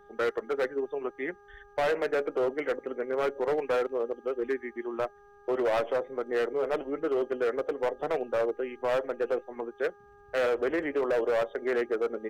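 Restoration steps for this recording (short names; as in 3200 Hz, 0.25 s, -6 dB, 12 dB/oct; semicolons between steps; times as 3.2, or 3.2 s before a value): clip repair -23 dBFS; de-hum 407.2 Hz, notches 4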